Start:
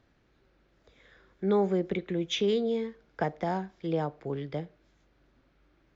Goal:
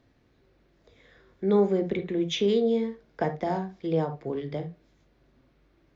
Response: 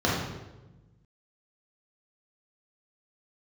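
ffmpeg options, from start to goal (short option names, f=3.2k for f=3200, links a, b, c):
-filter_complex "[0:a]asplit=2[a][b];[1:a]atrim=start_sample=2205,atrim=end_sample=3528,asetrate=43659,aresample=44100[c];[b][c]afir=irnorm=-1:irlink=0,volume=-20dB[d];[a][d]amix=inputs=2:normalize=0"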